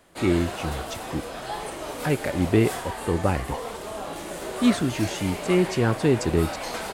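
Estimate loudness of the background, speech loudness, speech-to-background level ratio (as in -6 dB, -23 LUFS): -33.0 LUFS, -25.0 LUFS, 8.0 dB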